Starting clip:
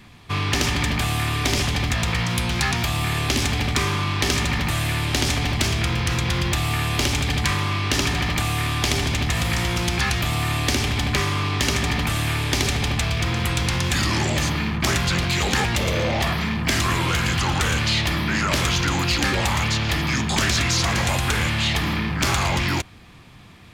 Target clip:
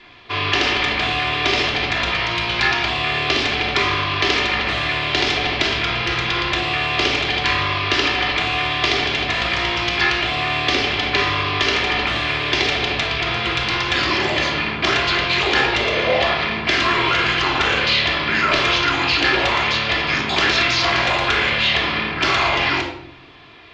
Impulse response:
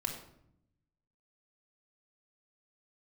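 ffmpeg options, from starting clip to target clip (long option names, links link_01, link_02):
-filter_complex "[0:a]lowpass=frequency=4800:width=0.5412,lowpass=frequency=4800:width=1.3066,lowshelf=frequency=270:width_type=q:width=1.5:gain=-12,acrossover=split=3500[link_01][link_02];[link_01]crystalizer=i=4:c=0[link_03];[link_03][link_02]amix=inputs=2:normalize=0[link_04];[1:a]atrim=start_sample=2205[link_05];[link_04][link_05]afir=irnorm=-1:irlink=0,volume=1dB"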